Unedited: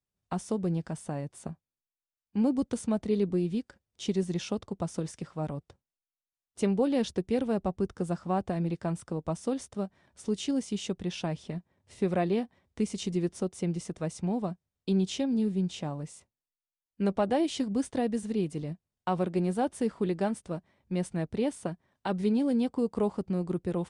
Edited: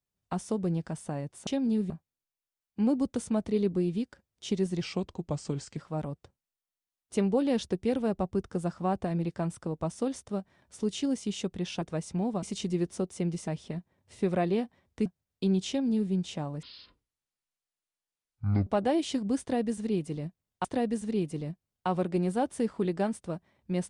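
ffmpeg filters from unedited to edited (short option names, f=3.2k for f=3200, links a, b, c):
-filter_complex "[0:a]asplit=12[a][b][c][d][e][f][g][h][i][j][k][l];[a]atrim=end=1.472[m];[b]atrim=start=15.138:end=15.572[n];[c]atrim=start=1.468:end=4.384[o];[d]atrim=start=4.38:end=5.23,asetpts=PTS-STARTPTS,asetrate=38808,aresample=44100[p];[e]atrim=start=5.226:end=11.272[q];[f]atrim=start=13.898:end=14.512[r];[g]atrim=start=12.848:end=13.902[s];[h]atrim=start=11.268:end=12.852[t];[i]atrim=start=14.508:end=16.084[u];[j]atrim=start=16.08:end=17.12,asetpts=PTS-STARTPTS,asetrate=22491,aresample=44100,atrim=end_sample=89929,asetpts=PTS-STARTPTS[v];[k]atrim=start=17.116:end=19.102[w];[l]atrim=start=17.858[x];[m][n]acrossfade=d=0.004:c1=hsin:c2=hsin[y];[y][o]acrossfade=d=0.004:c1=hsin:c2=hsin[z];[z][p]acrossfade=d=0.004:c1=hsin:c2=hsin[aa];[aa][q]acrossfade=d=0.004:c1=hsin:c2=hsin[ab];[ab][r]acrossfade=d=0.004:c1=hsin:c2=hsin[ac];[ac][s]acrossfade=d=0.004:c1=hsin:c2=hsin[ad];[ad][t]acrossfade=d=0.004:c1=hsin:c2=hsin[ae];[ae][u]acrossfade=d=0.004:c1=hsin:c2=hsin[af];[af][v]acrossfade=d=0.004:c1=hsin:c2=hsin[ag];[ag][w]acrossfade=d=0.004:c1=hsin:c2=hsin[ah];[ah][x]acrossfade=d=0.004:c1=hsin:c2=hsin"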